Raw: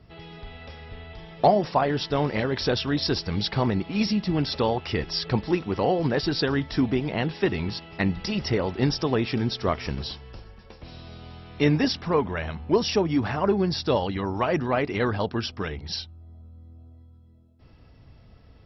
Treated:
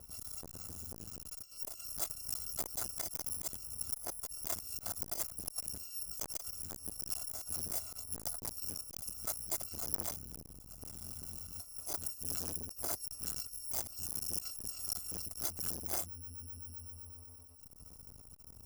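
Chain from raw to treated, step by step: FFT order left unsorted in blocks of 256 samples; negative-ratio compressor -30 dBFS, ratio -0.5; band shelf 2500 Hz -11.5 dB; core saturation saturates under 3500 Hz; gain -4.5 dB

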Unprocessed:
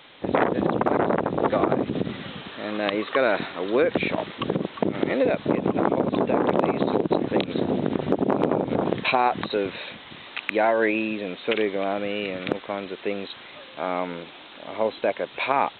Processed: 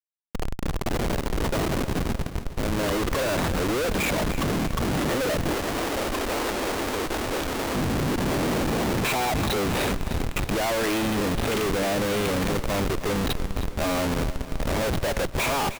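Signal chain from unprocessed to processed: opening faded in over 4.91 s; Schmitt trigger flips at -34 dBFS; 5.54–7.75 bell 160 Hz -13.5 dB 1.3 oct; feedback echo 0.31 s, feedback 55%, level -13.5 dB; gain +1.5 dB

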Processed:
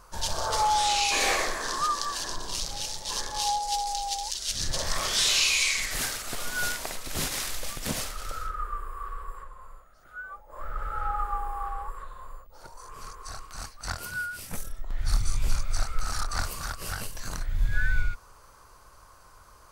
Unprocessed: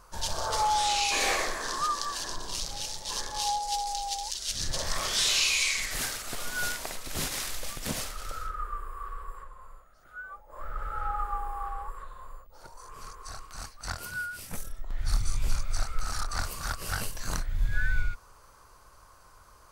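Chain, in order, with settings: 16.48–17.41 compressor, threshold -31 dBFS, peak gain reduction 6.5 dB; gain +2 dB

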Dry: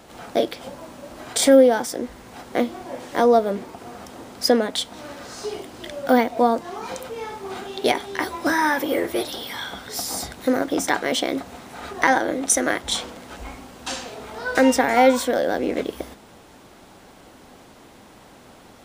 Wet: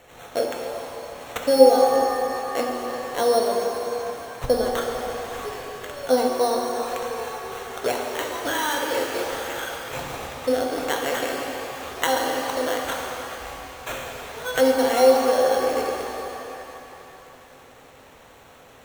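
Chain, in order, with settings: high shelf 3700 Hz +10 dB; treble ducked by the level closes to 1200 Hz, closed at -12 dBFS; sample-and-hold 9×; thirty-one-band EQ 200 Hz -9 dB, 315 Hz -7 dB, 500 Hz +6 dB; shimmer reverb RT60 3.1 s, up +7 st, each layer -8 dB, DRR 0.5 dB; gain -6.5 dB

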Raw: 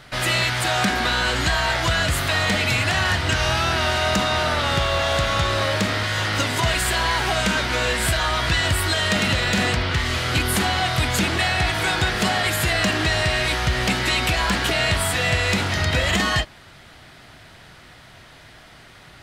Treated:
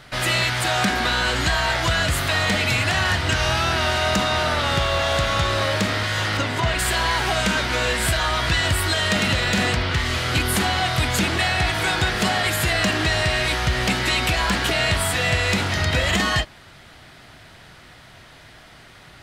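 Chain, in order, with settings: 6.37–6.79 LPF 3000 Hz 6 dB/oct

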